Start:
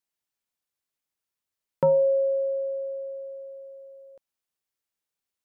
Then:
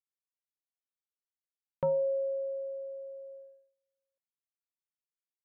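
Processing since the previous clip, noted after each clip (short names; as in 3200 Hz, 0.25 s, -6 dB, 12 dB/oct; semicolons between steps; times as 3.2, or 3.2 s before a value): gate -40 dBFS, range -33 dB; gain -8.5 dB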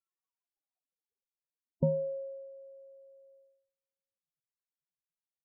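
loudest bins only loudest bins 32; low-pass sweep 1200 Hz -> 150 Hz, 0.18–2.51; gain +8.5 dB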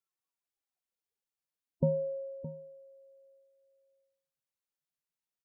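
echo 0.617 s -13 dB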